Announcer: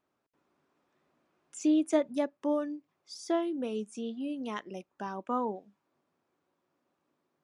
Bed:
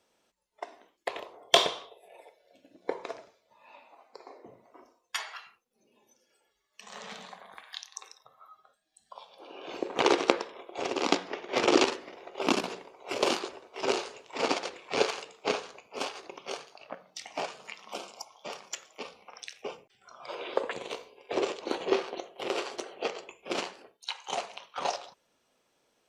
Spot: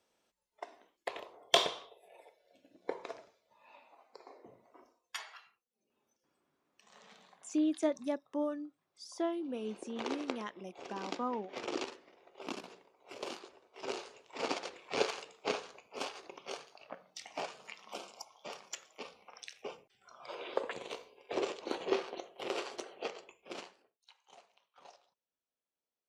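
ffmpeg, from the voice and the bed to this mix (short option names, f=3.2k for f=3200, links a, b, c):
-filter_complex "[0:a]adelay=5900,volume=-5dB[a];[1:a]volume=4.5dB,afade=t=out:st=4.77:d=0.98:silence=0.316228,afade=t=in:st=13.47:d=1.46:silence=0.316228,afade=t=out:st=22.81:d=1.19:silence=0.0944061[b];[a][b]amix=inputs=2:normalize=0"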